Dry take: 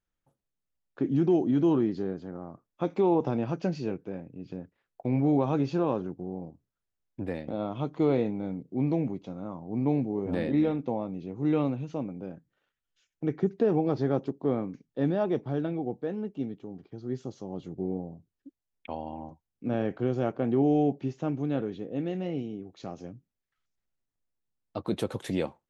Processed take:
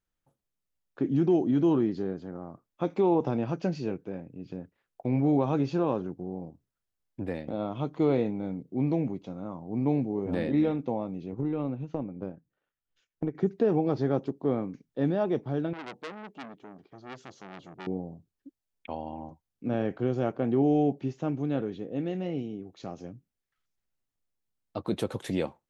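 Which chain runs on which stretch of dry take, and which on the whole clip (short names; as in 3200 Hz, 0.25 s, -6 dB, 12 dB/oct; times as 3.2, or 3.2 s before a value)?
11.32–13.35 high shelf 2600 Hz -10.5 dB + transient shaper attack +11 dB, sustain -4 dB + compressor 5:1, threshold -26 dBFS
15.73–17.87 low shelf 160 Hz -10.5 dB + core saturation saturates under 2500 Hz
whole clip: dry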